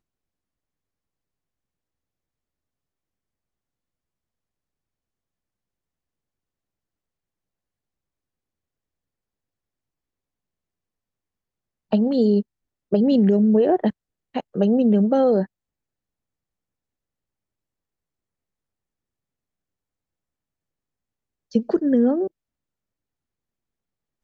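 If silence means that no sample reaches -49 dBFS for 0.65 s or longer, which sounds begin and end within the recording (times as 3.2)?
11.91–15.46
21.51–22.28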